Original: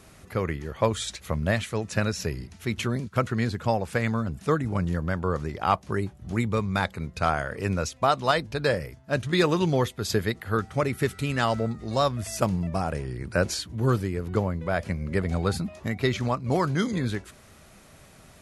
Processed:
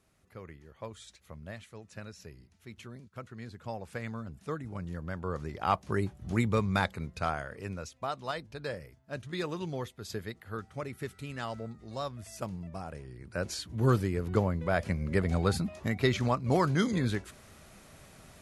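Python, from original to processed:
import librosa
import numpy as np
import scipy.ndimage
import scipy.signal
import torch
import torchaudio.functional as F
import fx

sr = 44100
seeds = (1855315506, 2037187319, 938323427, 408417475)

y = fx.gain(x, sr, db=fx.line((3.34, -19.0), (3.86, -12.5), (4.81, -12.5), (6.05, -2.0), (6.74, -2.0), (7.81, -13.0), (13.25, -13.0), (13.83, -2.0)))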